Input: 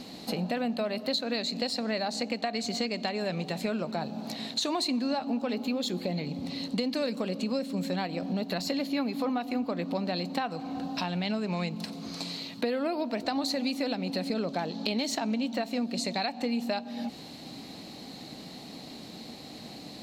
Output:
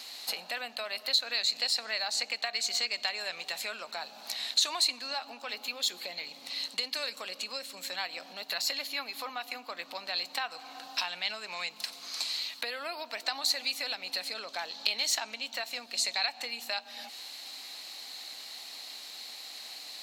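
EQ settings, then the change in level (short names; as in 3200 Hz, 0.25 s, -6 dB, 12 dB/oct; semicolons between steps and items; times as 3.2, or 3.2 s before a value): HPF 1300 Hz 12 dB/oct; high shelf 7300 Hz +6 dB; +3.5 dB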